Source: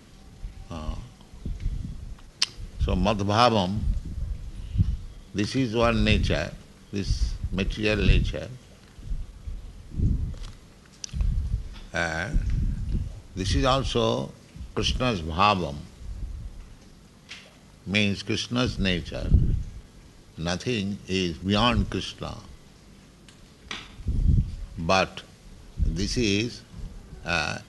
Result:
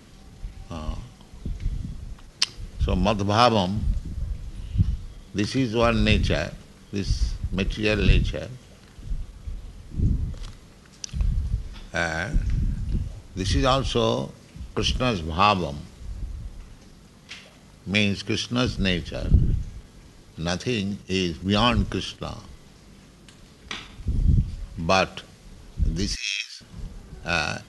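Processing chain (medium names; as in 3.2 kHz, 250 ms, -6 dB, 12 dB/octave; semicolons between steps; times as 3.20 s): 20.91–22.36 s: gate -39 dBFS, range -6 dB; 26.15–26.61 s: high-pass 1.4 kHz 24 dB/octave; trim +1.5 dB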